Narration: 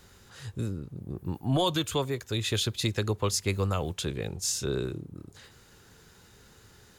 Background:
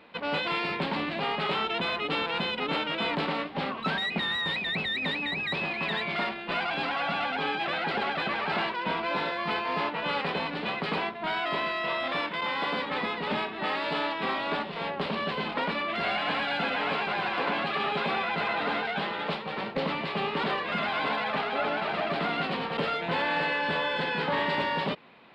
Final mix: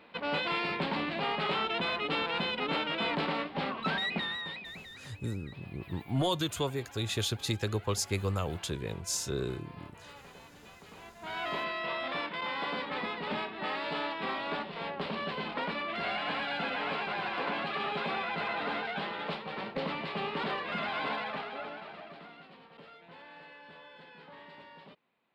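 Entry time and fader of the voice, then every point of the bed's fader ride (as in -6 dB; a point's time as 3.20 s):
4.65 s, -3.5 dB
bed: 4.12 s -2.5 dB
5.10 s -22.5 dB
10.96 s -22.5 dB
11.42 s -5 dB
21.14 s -5 dB
22.44 s -23.5 dB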